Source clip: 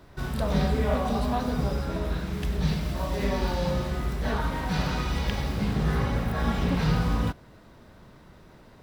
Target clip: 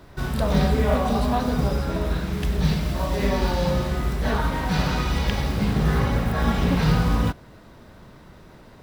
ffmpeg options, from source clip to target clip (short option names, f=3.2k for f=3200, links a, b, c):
-af "acrusher=bits=8:mode=log:mix=0:aa=0.000001,volume=4.5dB"